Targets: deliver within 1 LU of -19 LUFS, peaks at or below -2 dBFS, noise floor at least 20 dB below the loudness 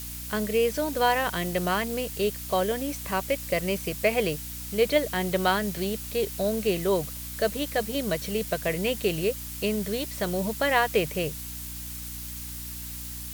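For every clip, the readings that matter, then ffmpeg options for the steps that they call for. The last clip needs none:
hum 60 Hz; highest harmonic 300 Hz; hum level -38 dBFS; noise floor -37 dBFS; noise floor target -48 dBFS; loudness -27.5 LUFS; peak level -8.0 dBFS; loudness target -19.0 LUFS
-> -af "bandreject=f=60:t=h:w=4,bandreject=f=120:t=h:w=4,bandreject=f=180:t=h:w=4,bandreject=f=240:t=h:w=4,bandreject=f=300:t=h:w=4"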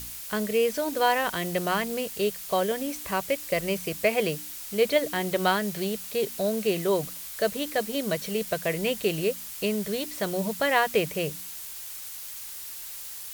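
hum not found; noise floor -39 dBFS; noise floor target -48 dBFS
-> -af "afftdn=nr=9:nf=-39"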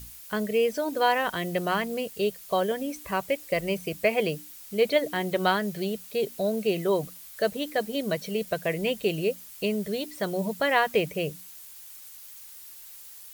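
noise floor -46 dBFS; noise floor target -48 dBFS
-> -af "afftdn=nr=6:nf=-46"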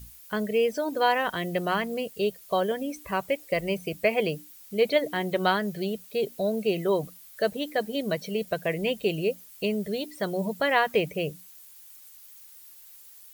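noise floor -50 dBFS; loudness -27.5 LUFS; peak level -8.5 dBFS; loudness target -19.0 LUFS
-> -af "volume=2.66,alimiter=limit=0.794:level=0:latency=1"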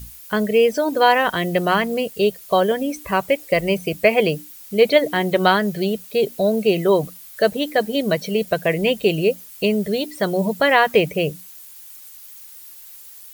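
loudness -19.5 LUFS; peak level -2.0 dBFS; noise floor -42 dBFS

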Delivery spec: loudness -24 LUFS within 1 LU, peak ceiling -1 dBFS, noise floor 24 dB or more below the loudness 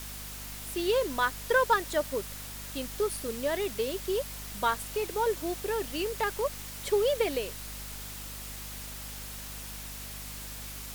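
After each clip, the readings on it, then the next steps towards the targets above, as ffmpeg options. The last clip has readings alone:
hum 50 Hz; highest harmonic 250 Hz; hum level -43 dBFS; noise floor -41 dBFS; noise floor target -56 dBFS; loudness -32.0 LUFS; peak level -12.0 dBFS; loudness target -24.0 LUFS
-> -af "bandreject=f=50:t=h:w=6,bandreject=f=100:t=h:w=6,bandreject=f=150:t=h:w=6,bandreject=f=200:t=h:w=6,bandreject=f=250:t=h:w=6"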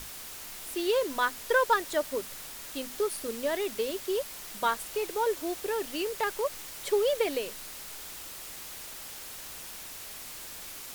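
hum not found; noise floor -43 dBFS; noise floor target -56 dBFS
-> -af "afftdn=nr=13:nf=-43"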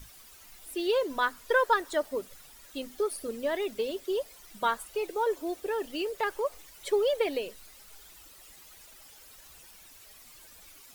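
noise floor -53 dBFS; noise floor target -55 dBFS
-> -af "afftdn=nr=6:nf=-53"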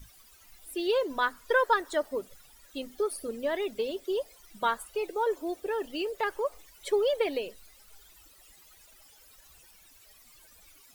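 noise floor -57 dBFS; loudness -30.5 LUFS; peak level -13.0 dBFS; loudness target -24.0 LUFS
-> -af "volume=2.11"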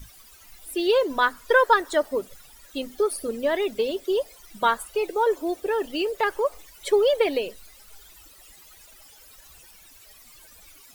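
loudness -24.0 LUFS; peak level -6.5 dBFS; noise floor -51 dBFS

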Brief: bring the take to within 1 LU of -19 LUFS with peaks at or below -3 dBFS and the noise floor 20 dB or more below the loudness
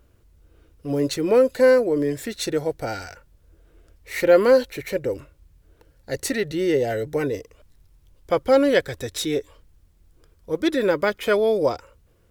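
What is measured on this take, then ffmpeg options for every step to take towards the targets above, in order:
loudness -21.5 LUFS; peak level -4.5 dBFS; loudness target -19.0 LUFS
-> -af "volume=1.33,alimiter=limit=0.708:level=0:latency=1"

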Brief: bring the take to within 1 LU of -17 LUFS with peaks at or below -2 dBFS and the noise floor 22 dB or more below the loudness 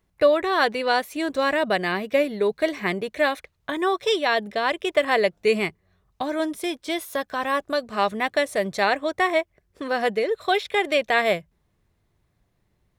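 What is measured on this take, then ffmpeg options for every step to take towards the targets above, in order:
loudness -23.5 LUFS; peak level -6.0 dBFS; loudness target -17.0 LUFS
-> -af "volume=2.11,alimiter=limit=0.794:level=0:latency=1"

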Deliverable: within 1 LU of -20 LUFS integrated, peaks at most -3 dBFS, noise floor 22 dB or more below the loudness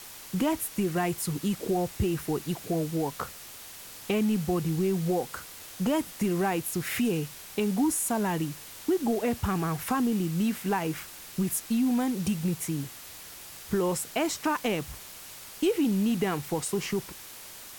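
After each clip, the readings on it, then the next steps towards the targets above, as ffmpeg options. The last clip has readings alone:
noise floor -45 dBFS; noise floor target -51 dBFS; loudness -29.0 LUFS; peak level -16.0 dBFS; loudness target -20.0 LUFS
-> -af "afftdn=nr=6:nf=-45"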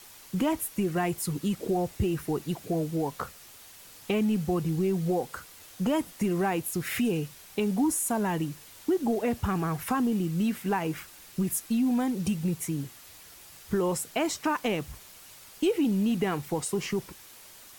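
noise floor -50 dBFS; noise floor target -51 dBFS
-> -af "afftdn=nr=6:nf=-50"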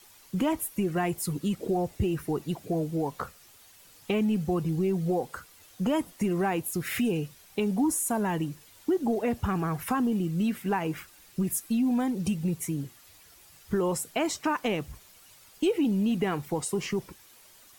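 noise floor -55 dBFS; loudness -29.0 LUFS; peak level -16.5 dBFS; loudness target -20.0 LUFS
-> -af "volume=2.82"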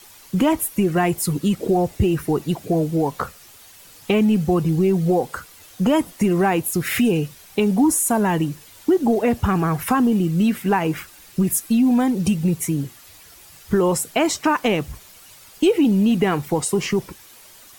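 loudness -20.0 LUFS; peak level -7.5 dBFS; noise floor -46 dBFS

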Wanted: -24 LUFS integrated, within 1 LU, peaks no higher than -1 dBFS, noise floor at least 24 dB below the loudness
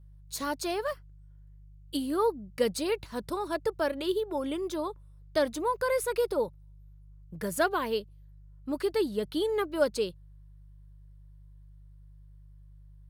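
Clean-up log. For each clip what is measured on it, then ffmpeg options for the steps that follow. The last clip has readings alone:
hum 50 Hz; highest harmonic 150 Hz; hum level -49 dBFS; loudness -31.0 LUFS; peak level -13.5 dBFS; loudness target -24.0 LUFS
-> -af "bandreject=f=50:t=h:w=4,bandreject=f=100:t=h:w=4,bandreject=f=150:t=h:w=4"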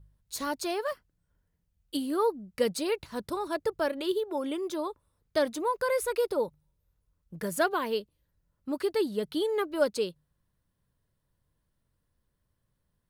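hum not found; loudness -31.0 LUFS; peak level -13.5 dBFS; loudness target -24.0 LUFS
-> -af "volume=2.24"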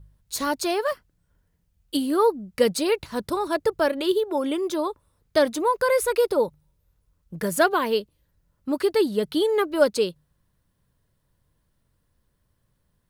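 loudness -24.0 LUFS; peak level -6.5 dBFS; noise floor -71 dBFS

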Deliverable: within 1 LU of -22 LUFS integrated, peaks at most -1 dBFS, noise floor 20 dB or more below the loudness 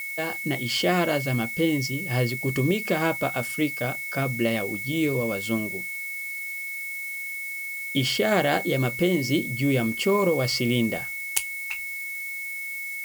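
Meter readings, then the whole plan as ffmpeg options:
steady tone 2.2 kHz; tone level -31 dBFS; noise floor -33 dBFS; noise floor target -46 dBFS; loudness -25.5 LUFS; peak level -5.5 dBFS; loudness target -22.0 LUFS
-> -af "bandreject=f=2200:w=30"
-af "afftdn=nr=13:nf=-33"
-af "volume=1.5"

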